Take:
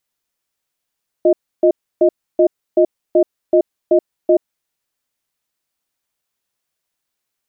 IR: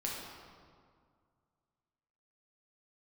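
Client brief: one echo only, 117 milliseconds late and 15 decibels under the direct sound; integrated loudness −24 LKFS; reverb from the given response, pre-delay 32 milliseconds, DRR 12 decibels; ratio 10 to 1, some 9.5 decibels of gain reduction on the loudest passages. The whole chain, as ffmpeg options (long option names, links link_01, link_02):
-filter_complex "[0:a]acompressor=threshold=-18dB:ratio=10,aecho=1:1:117:0.178,asplit=2[link_01][link_02];[1:a]atrim=start_sample=2205,adelay=32[link_03];[link_02][link_03]afir=irnorm=-1:irlink=0,volume=-15dB[link_04];[link_01][link_04]amix=inputs=2:normalize=0,volume=2.5dB"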